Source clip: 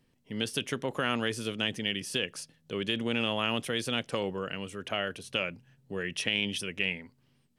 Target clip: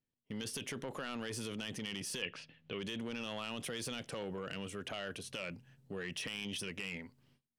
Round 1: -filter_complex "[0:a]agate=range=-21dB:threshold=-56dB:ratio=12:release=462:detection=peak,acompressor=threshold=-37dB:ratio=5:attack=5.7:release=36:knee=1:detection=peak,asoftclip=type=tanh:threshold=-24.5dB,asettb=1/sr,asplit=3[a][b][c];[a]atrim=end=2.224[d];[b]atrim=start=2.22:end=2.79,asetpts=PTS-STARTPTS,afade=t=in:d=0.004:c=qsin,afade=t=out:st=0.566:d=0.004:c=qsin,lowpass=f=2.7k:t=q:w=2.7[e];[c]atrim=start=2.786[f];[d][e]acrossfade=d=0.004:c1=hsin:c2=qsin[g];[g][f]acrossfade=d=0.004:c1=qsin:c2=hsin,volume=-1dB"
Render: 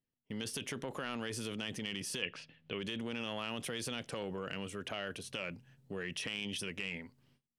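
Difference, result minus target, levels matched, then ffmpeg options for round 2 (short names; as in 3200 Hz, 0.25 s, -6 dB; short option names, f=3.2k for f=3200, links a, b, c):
soft clip: distortion -8 dB
-filter_complex "[0:a]agate=range=-21dB:threshold=-56dB:ratio=12:release=462:detection=peak,acompressor=threshold=-37dB:ratio=5:attack=5.7:release=36:knee=1:detection=peak,asoftclip=type=tanh:threshold=-31dB,asettb=1/sr,asplit=3[a][b][c];[a]atrim=end=2.224[d];[b]atrim=start=2.22:end=2.79,asetpts=PTS-STARTPTS,afade=t=in:d=0.004:c=qsin,afade=t=out:st=0.566:d=0.004:c=qsin,lowpass=f=2.7k:t=q:w=2.7[e];[c]atrim=start=2.786[f];[d][e]acrossfade=d=0.004:c1=hsin:c2=qsin[g];[g][f]acrossfade=d=0.004:c1=qsin:c2=hsin,volume=-1dB"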